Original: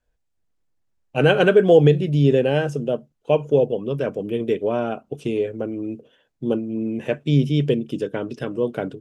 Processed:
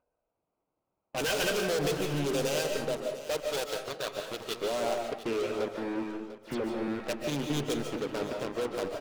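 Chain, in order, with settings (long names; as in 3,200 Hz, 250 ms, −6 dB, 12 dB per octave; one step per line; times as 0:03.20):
adaptive Wiener filter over 25 samples
first difference
low-pass that shuts in the quiet parts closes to 1,300 Hz, open at −37.5 dBFS
0:03.41–0:04.60: octave-band graphic EQ 125/250/500/1,000/2,000/4,000 Hz −5/−12/−10/+3/−9/+3 dB
in parallel at −1 dB: upward compression, threshold −44 dBFS
on the sum: leveller curve on the samples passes 5
downward compressor, threshold −22 dBFS, peak gain reduction 7 dB
hard clipping −28 dBFS, distortion −8 dB
0:05.68–0:06.88: all-pass dispersion lows, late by 94 ms, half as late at 2,700 Hz
single-tap delay 697 ms −14.5 dB
on a send at −3 dB: convolution reverb RT60 0.65 s, pre-delay 105 ms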